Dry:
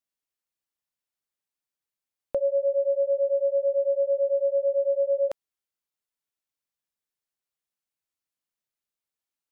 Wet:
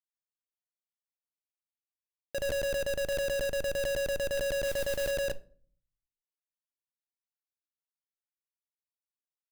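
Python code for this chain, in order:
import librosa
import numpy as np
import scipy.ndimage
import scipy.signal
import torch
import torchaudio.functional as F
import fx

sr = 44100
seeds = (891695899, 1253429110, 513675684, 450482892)

y = fx.chopper(x, sr, hz=1.6, depth_pct=65, duty_pct=50)
y = fx.schmitt(y, sr, flips_db=-33.0)
y = fx.mod_noise(y, sr, seeds[0], snr_db=14, at=(4.64, 5.11))
y = fx.room_shoebox(y, sr, seeds[1], volume_m3=460.0, walls='furnished', distance_m=0.39)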